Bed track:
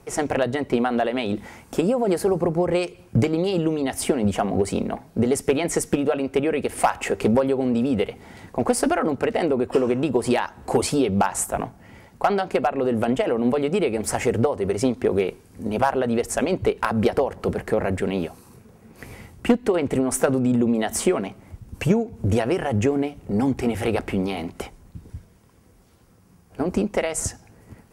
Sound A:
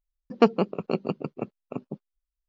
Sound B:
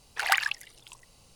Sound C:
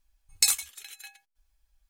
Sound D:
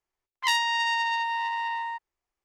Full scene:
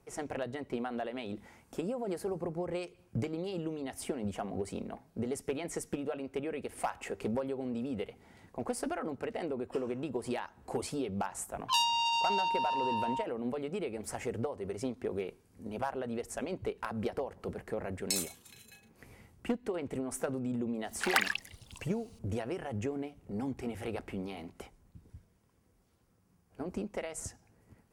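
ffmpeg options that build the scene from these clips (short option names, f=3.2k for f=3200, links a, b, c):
-filter_complex "[0:a]volume=-15dB[a];[4:a]asuperstop=centerf=2000:order=20:qfactor=3.6[b];[3:a]asplit=2[c][d];[d]adelay=36,volume=-7dB[e];[c][e]amix=inputs=2:normalize=0[f];[b]atrim=end=2.44,asetpts=PTS-STARTPTS,volume=-2.5dB,afade=t=in:d=0.004:c=hsin,afade=t=out:st=2.436:d=0.004:c=hsin,adelay=11260[g];[f]atrim=end=1.89,asetpts=PTS-STARTPTS,volume=-11.5dB,afade=t=in:d=0.004:c=hsin,afade=t=out:st=1.886:d=0.004:c=hsin,adelay=17680[h];[2:a]atrim=end=1.35,asetpts=PTS-STARTPTS,volume=-4dB,afade=t=in:d=0.004:c=hsin,afade=t=out:st=1.346:d=0.004:c=hsin,adelay=919044S[i];[a][g][h][i]amix=inputs=4:normalize=0"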